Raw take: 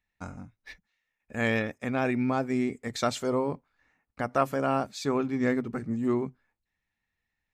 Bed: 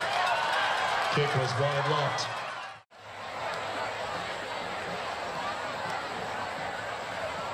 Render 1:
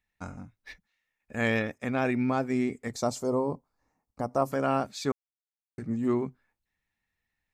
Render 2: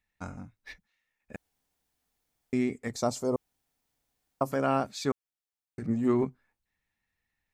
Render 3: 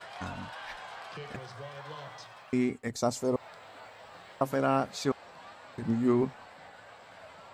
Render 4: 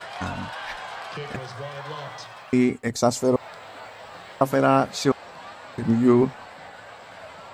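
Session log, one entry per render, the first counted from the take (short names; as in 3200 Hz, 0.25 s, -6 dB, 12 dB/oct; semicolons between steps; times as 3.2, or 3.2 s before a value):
2.93–4.52 band shelf 2300 Hz -14.5 dB; 5.12–5.78 mute
1.36–2.53 room tone; 3.36–4.41 room tone; 5.82–6.25 transient shaper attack +4 dB, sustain +10 dB
add bed -16 dB
gain +8.5 dB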